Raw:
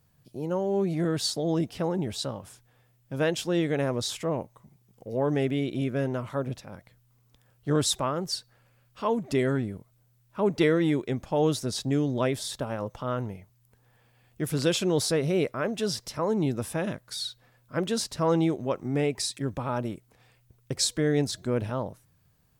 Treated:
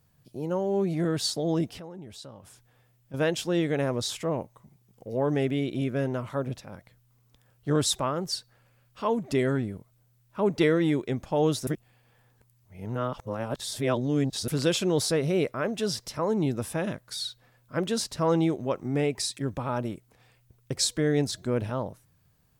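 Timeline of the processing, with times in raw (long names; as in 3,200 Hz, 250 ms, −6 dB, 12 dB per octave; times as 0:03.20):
0:01.79–0:03.14: downward compressor 2 to 1, threshold −50 dBFS
0:11.67–0:14.48: reverse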